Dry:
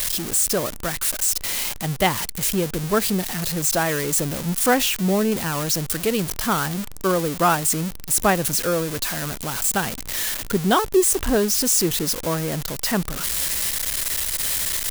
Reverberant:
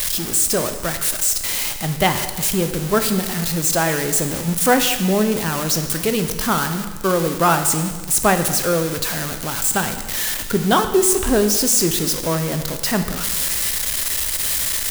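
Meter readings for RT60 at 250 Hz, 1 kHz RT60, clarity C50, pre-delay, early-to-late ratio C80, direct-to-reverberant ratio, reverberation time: 1.5 s, 1.5 s, 9.0 dB, 5 ms, 10.5 dB, 7.0 dB, 1.5 s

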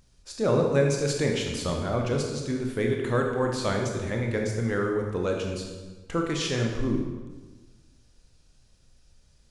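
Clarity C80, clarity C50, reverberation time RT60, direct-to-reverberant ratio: 5.0 dB, 3.0 dB, 1.3 s, 1.0 dB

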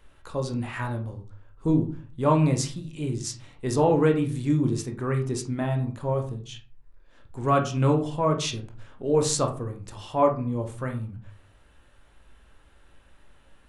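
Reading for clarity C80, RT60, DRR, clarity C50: 16.0 dB, 0.40 s, 3.0 dB, 10.5 dB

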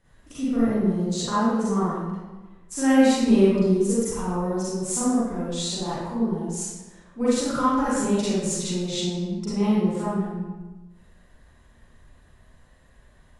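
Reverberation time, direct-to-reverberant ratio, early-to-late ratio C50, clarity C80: 1.2 s, -11.0 dB, -5.0 dB, -0.5 dB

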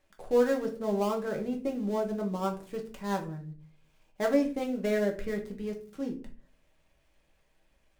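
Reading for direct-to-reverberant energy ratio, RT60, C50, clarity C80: 1.0 dB, 0.40 s, 11.5 dB, 17.0 dB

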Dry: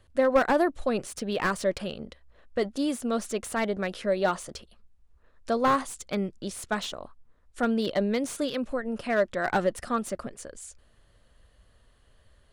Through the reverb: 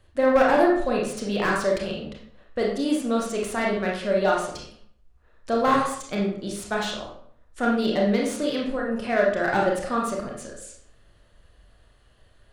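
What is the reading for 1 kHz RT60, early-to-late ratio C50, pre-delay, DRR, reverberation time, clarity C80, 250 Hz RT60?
0.60 s, 3.5 dB, 26 ms, -2.5 dB, 0.60 s, 7.0 dB, 0.65 s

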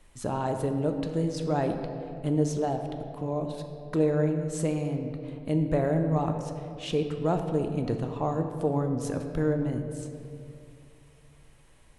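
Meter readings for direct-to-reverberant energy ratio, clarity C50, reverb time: 5.0 dB, 6.5 dB, 2.5 s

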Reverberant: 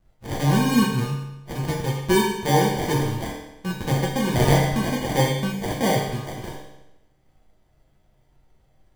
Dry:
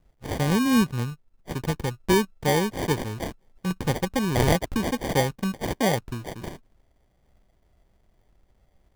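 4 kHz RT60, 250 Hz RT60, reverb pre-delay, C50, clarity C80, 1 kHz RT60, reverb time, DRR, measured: 0.85 s, 0.90 s, 7 ms, 2.5 dB, 5.5 dB, 0.90 s, 0.90 s, -3.5 dB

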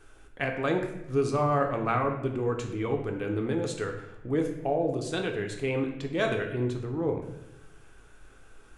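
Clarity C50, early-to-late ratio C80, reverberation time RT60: 7.0 dB, 9.5 dB, 0.90 s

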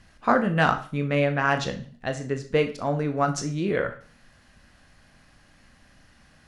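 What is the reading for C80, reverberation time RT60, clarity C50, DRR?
17.0 dB, 0.40 s, 12.0 dB, 6.0 dB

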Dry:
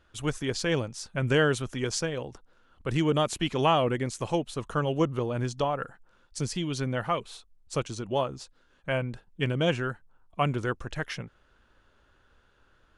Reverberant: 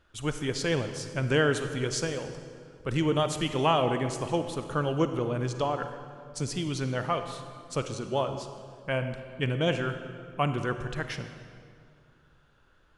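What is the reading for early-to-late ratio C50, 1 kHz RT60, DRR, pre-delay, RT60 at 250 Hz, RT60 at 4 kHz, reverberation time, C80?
8.5 dB, 2.1 s, 8.0 dB, 35 ms, 2.6 s, 1.6 s, 2.2 s, 9.5 dB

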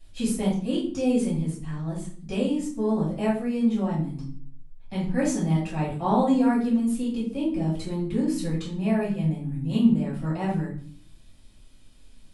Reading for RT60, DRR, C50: 0.50 s, -6.5 dB, 5.0 dB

